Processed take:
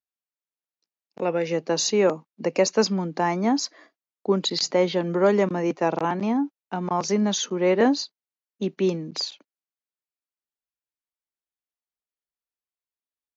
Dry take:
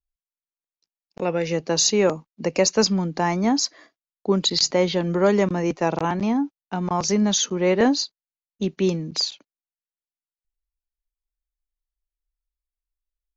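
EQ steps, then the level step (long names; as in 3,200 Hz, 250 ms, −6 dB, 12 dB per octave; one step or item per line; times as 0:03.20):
high-pass filter 200 Hz 12 dB per octave
high-shelf EQ 3,600 Hz −8 dB
0.0 dB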